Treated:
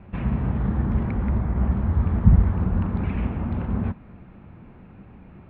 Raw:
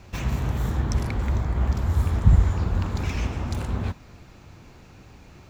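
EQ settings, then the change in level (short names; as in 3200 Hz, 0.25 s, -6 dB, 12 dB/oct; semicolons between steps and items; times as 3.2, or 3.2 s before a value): Bessel low-pass 1700 Hz, order 8; bell 200 Hz +9.5 dB 0.59 oct; 0.0 dB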